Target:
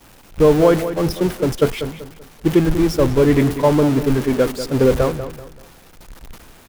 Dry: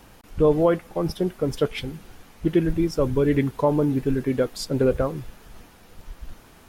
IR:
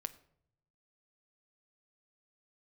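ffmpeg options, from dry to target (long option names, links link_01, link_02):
-filter_complex "[0:a]aeval=exprs='val(0)+0.5*0.0631*sgn(val(0))':channel_layout=same,agate=range=-33dB:threshold=-18dB:ratio=3:detection=peak,asplit=2[link_01][link_02];[link_02]adelay=192,lowpass=frequency=3000:poles=1,volume=-11dB,asplit=2[link_03][link_04];[link_04]adelay=192,lowpass=frequency=3000:poles=1,volume=0.33,asplit=2[link_05][link_06];[link_06]adelay=192,lowpass=frequency=3000:poles=1,volume=0.33,asplit=2[link_07][link_08];[link_08]adelay=192,lowpass=frequency=3000:poles=1,volume=0.33[link_09];[link_03][link_05][link_07][link_09]amix=inputs=4:normalize=0[link_10];[link_01][link_10]amix=inputs=2:normalize=0,volume=4.5dB"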